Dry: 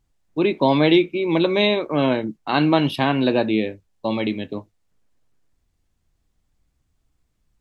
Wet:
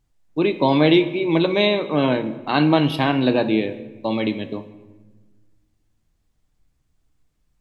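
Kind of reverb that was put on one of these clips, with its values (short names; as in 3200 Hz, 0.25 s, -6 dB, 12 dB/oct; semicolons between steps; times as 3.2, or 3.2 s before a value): shoebox room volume 960 m³, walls mixed, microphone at 0.46 m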